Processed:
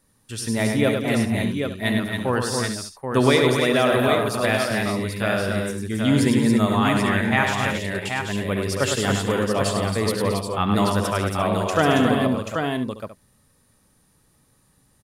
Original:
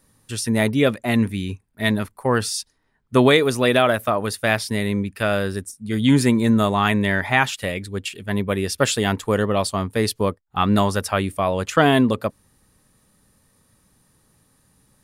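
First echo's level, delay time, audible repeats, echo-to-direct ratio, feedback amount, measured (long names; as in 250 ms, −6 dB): −11.0 dB, 70 ms, 8, 0.5 dB, repeats not evenly spaced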